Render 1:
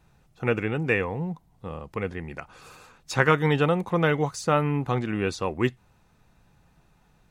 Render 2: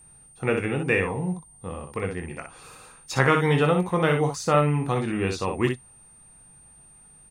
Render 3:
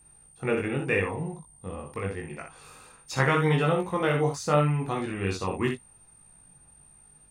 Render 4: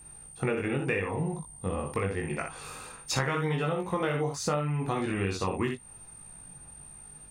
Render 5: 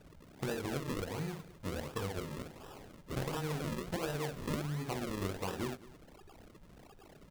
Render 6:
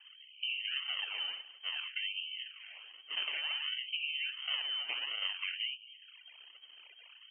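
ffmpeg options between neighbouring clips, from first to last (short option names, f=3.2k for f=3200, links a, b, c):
-af "bandreject=f=1.5k:w=29,aecho=1:1:22|61:0.398|0.501,aeval=exprs='val(0)+0.00316*sin(2*PI*8800*n/s)':c=same"
-af "flanger=delay=19:depth=2.9:speed=0.83"
-af "acompressor=threshold=-33dB:ratio=8,volume=7dB"
-af "acrusher=samples=40:mix=1:aa=0.000001:lfo=1:lforange=40:lforate=1.4,aecho=1:1:209:0.119,volume=-8dB"
-af "lowpass=f=2.7k:t=q:w=0.5098,lowpass=f=2.7k:t=q:w=0.6013,lowpass=f=2.7k:t=q:w=0.9,lowpass=f=2.7k:t=q:w=2.563,afreqshift=-3200,afftfilt=real='re*gte(b*sr/1024,210*pow(2300/210,0.5+0.5*sin(2*PI*0.56*pts/sr)))':imag='im*gte(b*sr/1024,210*pow(2300/210,0.5+0.5*sin(2*PI*0.56*pts/sr)))':win_size=1024:overlap=0.75"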